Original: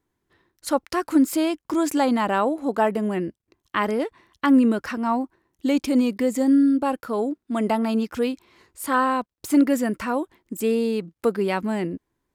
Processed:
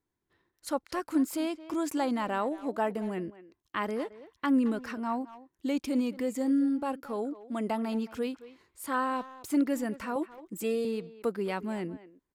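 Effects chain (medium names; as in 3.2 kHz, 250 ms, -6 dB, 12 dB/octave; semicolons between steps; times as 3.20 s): 10.15–10.85 s: comb 6 ms, depth 94%; speakerphone echo 220 ms, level -15 dB; trim -9 dB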